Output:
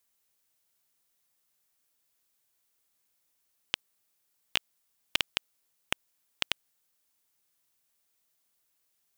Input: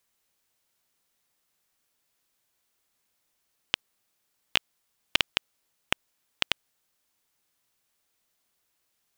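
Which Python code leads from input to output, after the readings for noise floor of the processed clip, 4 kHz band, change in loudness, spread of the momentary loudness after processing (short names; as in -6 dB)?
-76 dBFS, -3.5 dB, -4.0 dB, 6 LU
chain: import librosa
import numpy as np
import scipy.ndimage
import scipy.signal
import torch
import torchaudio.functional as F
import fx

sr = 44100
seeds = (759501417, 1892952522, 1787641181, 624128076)

y = fx.high_shelf(x, sr, hz=6700.0, db=7.5)
y = y * librosa.db_to_amplitude(-5.0)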